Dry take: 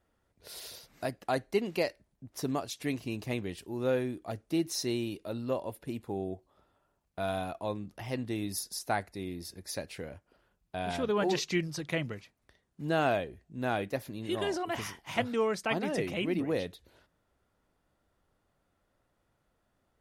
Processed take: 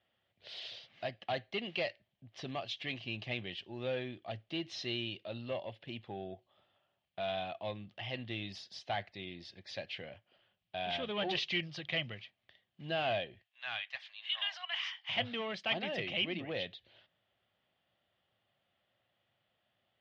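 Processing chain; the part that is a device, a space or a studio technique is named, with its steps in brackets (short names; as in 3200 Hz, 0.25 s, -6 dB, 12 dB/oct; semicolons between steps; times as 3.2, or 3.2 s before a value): 13.42–15.09 inverse Chebyshev high-pass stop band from 380 Hz, stop band 50 dB; overdrive pedal into a guitar cabinet (overdrive pedal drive 15 dB, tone 4500 Hz, clips at -15.5 dBFS; speaker cabinet 89–4200 Hz, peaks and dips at 110 Hz +8 dB, 290 Hz -9 dB, 440 Hz -9 dB, 970 Hz -10 dB, 1400 Hz -9 dB, 3100 Hz +10 dB); gain -6.5 dB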